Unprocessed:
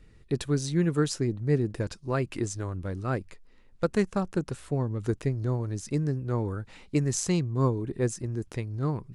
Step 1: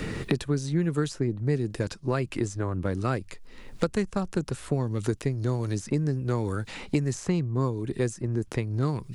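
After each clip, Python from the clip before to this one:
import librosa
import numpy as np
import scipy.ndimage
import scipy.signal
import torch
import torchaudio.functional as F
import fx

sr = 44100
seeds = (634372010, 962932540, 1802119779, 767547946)

y = fx.band_squash(x, sr, depth_pct=100)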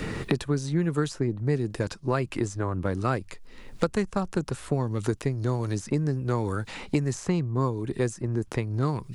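y = fx.dynamic_eq(x, sr, hz=970.0, q=1.1, threshold_db=-45.0, ratio=4.0, max_db=4)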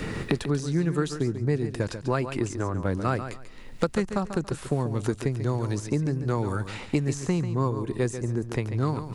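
y = fx.echo_feedback(x, sr, ms=141, feedback_pct=22, wet_db=-10)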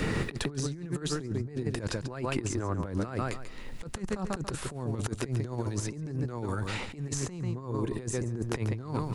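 y = fx.over_compress(x, sr, threshold_db=-30.0, ratio=-0.5)
y = F.gain(torch.from_numpy(y), -1.5).numpy()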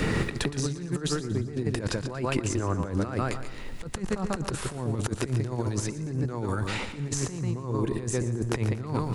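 y = fx.echo_feedback(x, sr, ms=117, feedback_pct=51, wet_db=-15.0)
y = F.gain(torch.from_numpy(y), 3.5).numpy()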